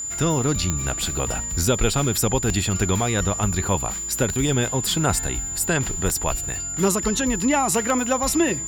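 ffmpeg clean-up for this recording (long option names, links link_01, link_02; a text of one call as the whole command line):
ffmpeg -i in.wav -af "adeclick=threshold=4,bandreject=frequency=7100:width=30" out.wav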